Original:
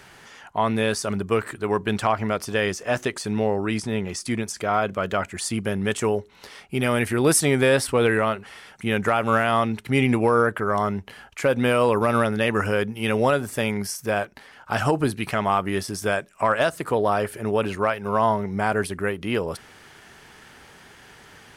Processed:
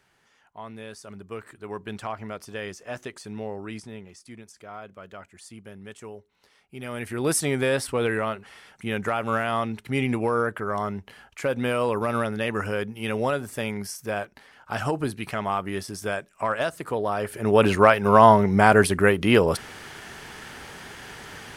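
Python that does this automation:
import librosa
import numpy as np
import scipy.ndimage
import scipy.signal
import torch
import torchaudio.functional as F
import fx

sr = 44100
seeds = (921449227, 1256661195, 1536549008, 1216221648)

y = fx.gain(x, sr, db=fx.line((0.89, -17.5), (1.83, -11.0), (3.76, -11.0), (4.16, -18.0), (6.59, -18.0), (7.3, -5.0), (17.16, -5.0), (17.66, 7.0)))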